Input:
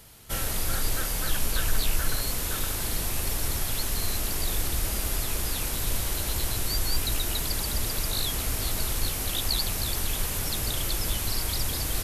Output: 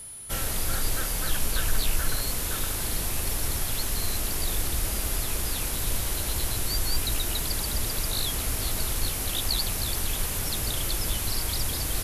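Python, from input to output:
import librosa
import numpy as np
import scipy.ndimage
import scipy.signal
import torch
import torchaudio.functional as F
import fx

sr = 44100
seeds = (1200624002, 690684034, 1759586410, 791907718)

y = x + 10.0 ** (-39.0 / 20.0) * np.sin(2.0 * np.pi * 10000.0 * np.arange(len(x)) / sr)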